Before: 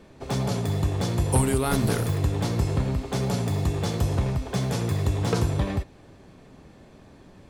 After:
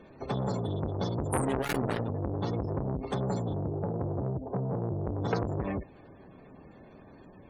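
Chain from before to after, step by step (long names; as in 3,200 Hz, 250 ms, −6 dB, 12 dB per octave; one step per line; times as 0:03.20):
0:01.45–0:02.42: phase distortion by the signal itself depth 0.61 ms
0:03.53–0:05.08: Chebyshev band-pass filter 100–760 Hz, order 2
gate on every frequency bin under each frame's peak −25 dB strong
low-shelf EQ 110 Hz −8 dB
saturating transformer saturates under 1,000 Hz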